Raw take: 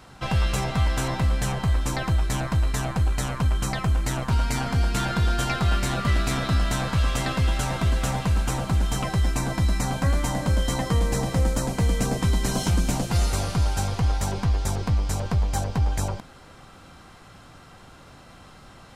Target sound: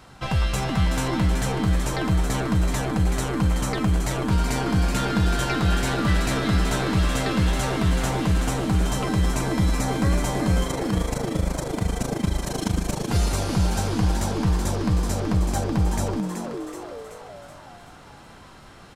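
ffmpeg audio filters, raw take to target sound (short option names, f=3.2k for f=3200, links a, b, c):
-filter_complex "[0:a]asettb=1/sr,asplit=3[a][b][c];[a]atrim=end=10.634[d];[b]atrim=start=10.63:end=13.09,asetpts=PTS-STARTPTS,afade=t=in:d=0.004:c=qsin,afade=t=out:st=2.456:d=0.004:c=qsin,tremolo=f=26:d=0.974[e];[c]atrim=start=13.086[f];[d][e]acrossfade=d=0.004:c1=hsin:c2=qsin[g];[g][f]acrossfade=d=0.004:c1=qsin:c2=hsin,asplit=8[h][i][j][k][l][m][n][o];[i]adelay=377,afreqshift=130,volume=-7dB[p];[j]adelay=754,afreqshift=260,volume=-12.2dB[q];[k]adelay=1131,afreqshift=390,volume=-17.4dB[r];[l]adelay=1508,afreqshift=520,volume=-22.6dB[s];[m]adelay=1885,afreqshift=650,volume=-27.8dB[t];[n]adelay=2262,afreqshift=780,volume=-33dB[u];[o]adelay=2639,afreqshift=910,volume=-38.2dB[v];[h][p][q][r][s][t][u][v]amix=inputs=8:normalize=0"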